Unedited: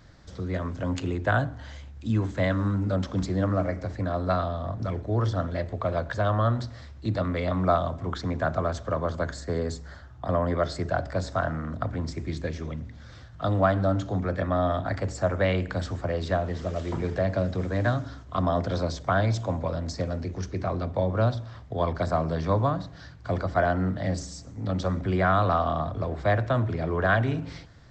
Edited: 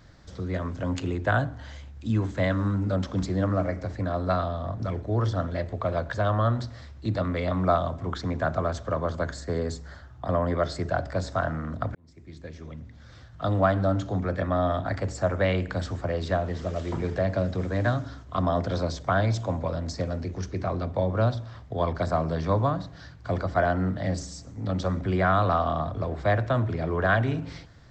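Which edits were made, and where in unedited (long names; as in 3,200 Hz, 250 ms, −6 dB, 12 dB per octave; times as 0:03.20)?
0:11.95–0:13.53: fade in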